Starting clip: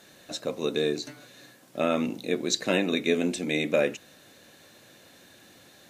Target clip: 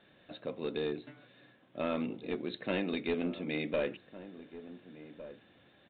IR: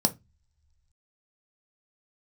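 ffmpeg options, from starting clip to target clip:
-filter_complex "[0:a]lowshelf=f=240:g=3.5,aresample=8000,aeval=exprs='clip(val(0),-1,0.119)':c=same,aresample=44100,asplit=2[s0][s1];[s1]adelay=1458,volume=0.2,highshelf=f=4000:g=-32.8[s2];[s0][s2]amix=inputs=2:normalize=0,volume=0.376"

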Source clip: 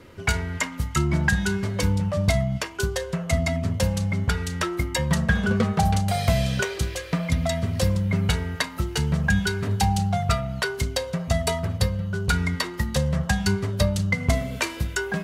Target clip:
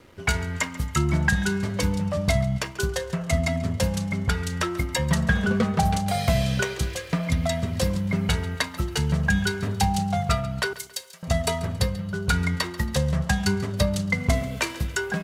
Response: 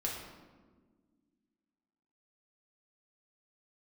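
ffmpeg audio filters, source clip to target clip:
-filter_complex "[0:a]aeval=exprs='sgn(val(0))*max(abs(val(0))-0.00211,0)':c=same,asettb=1/sr,asplit=3[s0][s1][s2];[s0]atrim=end=10.734[s3];[s1]atrim=start=10.73:end=11.23,asetpts=PTS-STARTPTS,afade=t=in:d=0.004:c=qsin,afade=t=out:st=0.496:d=0.004:c=qsin,aderivative[s4];[s2]atrim=start=11.226[s5];[s3][s4]acrossfade=d=0.004:c1=hsin:c2=qsin[s6];[s6][s5]acrossfade=d=0.004:c1=qsin:c2=hsin,bandreject=f=50:t=h:w=6,bandreject=f=100:t=h:w=6,asplit=2[s7][s8];[s8]aecho=0:1:138|276|414:0.133|0.0507|0.0193[s9];[s7][s9]amix=inputs=2:normalize=0"

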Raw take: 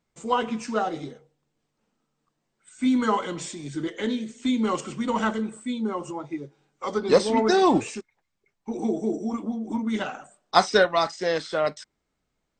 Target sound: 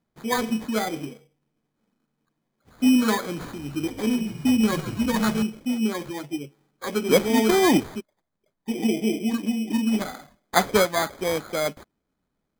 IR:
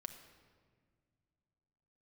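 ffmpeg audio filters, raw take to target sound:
-filter_complex "[0:a]equalizer=f=220:t=o:w=1.5:g=7,acrusher=samples=16:mix=1:aa=0.000001,asettb=1/sr,asplit=3[s0][s1][s2];[s0]atrim=end=3.254[s3];[s1]atrim=start=3.25:end=5.43,asetpts=PTS-STARTPTS,afade=t=in:d=0.004:c=qsin,afade=t=out:st=2.176:d=0.004:c=qsin,asplit=8[s4][s5][s6][s7][s8][s9][s10][s11];[s5]adelay=136,afreqshift=-49,volume=0.237[s12];[s6]adelay=272,afreqshift=-98,volume=0.143[s13];[s7]adelay=408,afreqshift=-147,volume=0.0851[s14];[s8]adelay=544,afreqshift=-196,volume=0.0513[s15];[s9]adelay=680,afreqshift=-245,volume=0.0309[s16];[s10]adelay=816,afreqshift=-294,volume=0.0184[s17];[s11]adelay=952,afreqshift=-343,volume=0.0111[s18];[s4][s12][s13][s14][s15][s16][s17][s18]amix=inputs=8:normalize=0,atrim=end_sample=96138[s19];[s2]atrim=start=5.426[s20];[s3][s19]acrossfade=d=0.004:c1=hsin:c2=qsin[s21];[s21][s20]acrossfade=d=0.004:c1=qsin:c2=hsin,volume=0.75"

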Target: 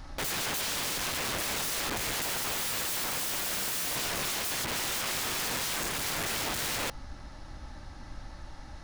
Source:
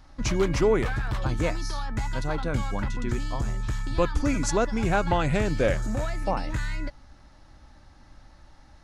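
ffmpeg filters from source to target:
-filter_complex "[0:a]asettb=1/sr,asplit=3[s0][s1][s2];[s0]atrim=end=2.224[s3];[s1]atrim=start=2.22:end=3.96,asetpts=PTS-STARTPTS,afade=t=in:d=0.004:c=qsin,afade=t=out:st=1.736:d=0.004:c=qsin,asplit=2[s4][s5];[s5]highpass=f=720:p=1,volume=100,asoftclip=type=tanh:threshold=0.168[s6];[s4][s6]amix=inputs=2:normalize=0,lowpass=f=1900:p=1,volume=0.501[s7];[s2]atrim=start=3.956[s8];[s3][s7]acrossfade=d=0.004:c1=hsin:c2=qsin[s9];[s9][s8]acrossfade=d=0.004:c1=qsin:c2=hsin,alimiter=limit=0.112:level=0:latency=1:release=26,aeval=exprs='(mod(56.2*val(0)+1,2)-1)/56.2':c=same,volume=2.37"

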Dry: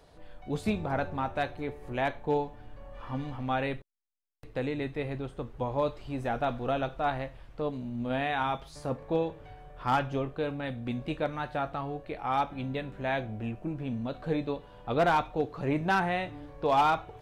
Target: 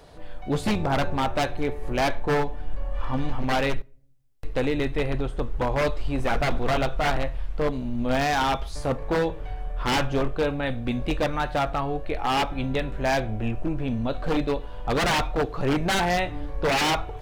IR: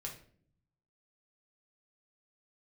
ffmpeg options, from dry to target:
-filter_complex "[0:a]asubboost=boost=6:cutoff=56,aeval=exprs='0.0531*(abs(mod(val(0)/0.0531+3,4)-2)-1)':c=same,asplit=2[s0][s1];[1:a]atrim=start_sample=2205[s2];[s1][s2]afir=irnorm=-1:irlink=0,volume=0.119[s3];[s0][s3]amix=inputs=2:normalize=0,volume=2.51"

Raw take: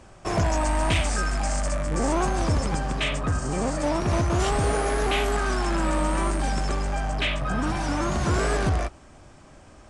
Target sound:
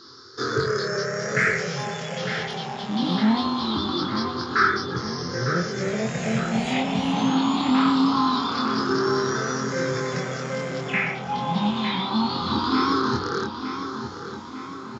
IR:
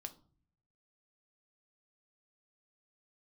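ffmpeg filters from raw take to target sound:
-filter_complex "[0:a]afftfilt=real='re*pow(10,19/40*sin(2*PI*(0.53*log(max(b,1)*sr/1024/100)/log(2)-(0.35)*(pts-256)/sr)))':imag='im*pow(10,19/40*sin(2*PI*(0.53*log(max(b,1)*sr/1024/100)/log(2)-(0.35)*(pts-256)/sr)))':win_size=1024:overlap=0.75,equalizer=f=900:t=o:w=1.5:g=-9.5,bandreject=f=50:t=h:w=6,bandreject=f=100:t=h:w=6,bandreject=f=150:t=h:w=6,bandreject=f=200:t=h:w=6,bandreject=f=250:t=h:w=6,acrossover=split=4300[s0][s1];[s1]acompressor=threshold=0.00447:ratio=4[s2];[s0][s2]amix=inputs=2:normalize=0,asetrate=29106,aresample=44100,aexciter=amount=4.5:drive=6:freq=4600,highpass=f=140:w=0.5412,highpass=f=140:w=1.3066,equalizer=f=1300:t=q:w=4:g=7,equalizer=f=3400:t=q:w=4:g=7,equalizer=f=5900:t=q:w=4:g=-10,lowpass=f=8400:w=0.5412,lowpass=f=8400:w=1.3066,asplit=2[s3][s4];[s4]adelay=23,volume=0.708[s5];[s3][s5]amix=inputs=2:normalize=0,asplit=2[s6][s7];[s7]adelay=905,lowpass=f=4600:p=1,volume=0.355,asplit=2[s8][s9];[s9]adelay=905,lowpass=f=4600:p=1,volume=0.55,asplit=2[s10][s11];[s11]adelay=905,lowpass=f=4600:p=1,volume=0.55,asplit=2[s12][s13];[s13]adelay=905,lowpass=f=4600:p=1,volume=0.55,asplit=2[s14][s15];[s15]adelay=905,lowpass=f=4600:p=1,volume=0.55,asplit=2[s16][s17];[s17]adelay=905,lowpass=f=4600:p=1,volume=0.55[s18];[s6][s8][s10][s12][s14][s16][s18]amix=inputs=7:normalize=0"

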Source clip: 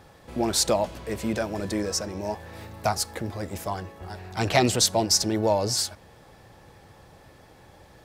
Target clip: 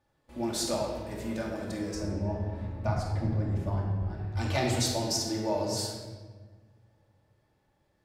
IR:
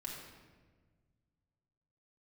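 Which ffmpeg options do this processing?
-filter_complex "[0:a]agate=range=0.2:threshold=0.00708:ratio=16:detection=peak,asplit=3[s0][s1][s2];[s0]afade=t=out:st=1.94:d=0.02[s3];[s1]aemphasis=mode=reproduction:type=riaa,afade=t=in:st=1.94:d=0.02,afade=t=out:st=4.34:d=0.02[s4];[s2]afade=t=in:st=4.34:d=0.02[s5];[s3][s4][s5]amix=inputs=3:normalize=0[s6];[1:a]atrim=start_sample=2205[s7];[s6][s7]afir=irnorm=-1:irlink=0,volume=0.501"

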